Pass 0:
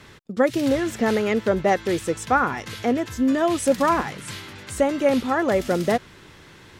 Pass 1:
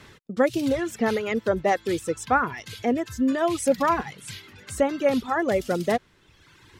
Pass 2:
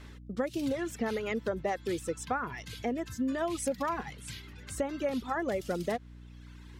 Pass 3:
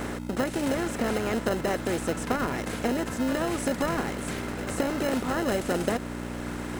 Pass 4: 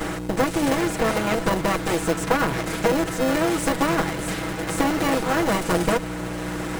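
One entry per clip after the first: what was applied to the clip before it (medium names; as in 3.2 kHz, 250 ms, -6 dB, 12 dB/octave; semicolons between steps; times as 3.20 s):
reverb removal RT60 1.3 s; trim -1.5 dB
hum 60 Hz, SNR 18 dB; compression, threshold -22 dBFS, peak gain reduction 7.5 dB; trim -5.5 dB
spectral levelling over time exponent 0.4; in parallel at -3.5 dB: sample-and-hold 38×; on the sum: trim -2.5 dB
comb filter that takes the minimum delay 6.2 ms; trim +7 dB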